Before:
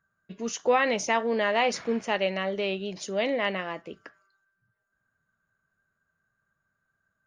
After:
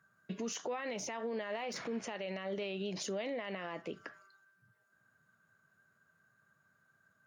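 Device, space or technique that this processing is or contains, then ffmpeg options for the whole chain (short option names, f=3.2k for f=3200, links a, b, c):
podcast mastering chain: -af "highpass=f=100:w=0.5412,highpass=f=100:w=1.3066,deesser=0.8,acompressor=threshold=-39dB:ratio=2.5,alimiter=level_in=12dB:limit=-24dB:level=0:latency=1:release=62,volume=-12dB,volume=6dB" -ar 48000 -c:a libmp3lame -b:a 96k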